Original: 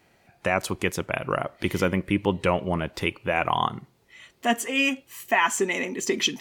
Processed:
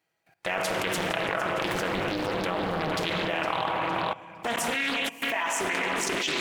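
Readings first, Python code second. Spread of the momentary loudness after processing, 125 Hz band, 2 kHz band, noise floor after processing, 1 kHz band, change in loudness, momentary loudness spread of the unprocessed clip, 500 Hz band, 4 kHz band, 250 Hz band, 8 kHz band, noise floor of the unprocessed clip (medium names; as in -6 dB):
3 LU, -6.0 dB, -1.0 dB, -78 dBFS, -1.5 dB, -2.5 dB, 7 LU, -2.5 dB, 0.0 dB, -5.0 dB, -2.0 dB, -63 dBFS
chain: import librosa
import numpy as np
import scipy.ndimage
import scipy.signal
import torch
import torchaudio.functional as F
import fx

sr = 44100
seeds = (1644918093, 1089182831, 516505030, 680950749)

y = fx.law_mismatch(x, sr, coded='A')
y = scipy.signal.sosfilt(scipy.signal.butter(2, 43.0, 'highpass', fs=sr, output='sos'), y)
y = fx.low_shelf(y, sr, hz=82.0, db=6.0)
y = fx.rider(y, sr, range_db=5, speed_s=0.5)
y = fx.low_shelf(y, sr, hz=290.0, db=-12.0)
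y = y + 0.42 * np.pad(y, (int(6.2 * sr / 1000.0), 0))[:len(y)]
y = fx.echo_feedback(y, sr, ms=459, feedback_pct=39, wet_db=-11.0)
y = fx.room_shoebox(y, sr, seeds[0], volume_m3=190.0, walls='hard', distance_m=0.35)
y = fx.level_steps(y, sr, step_db=17)
y = fx.doppler_dist(y, sr, depth_ms=0.98)
y = y * librosa.db_to_amplitude(6.0)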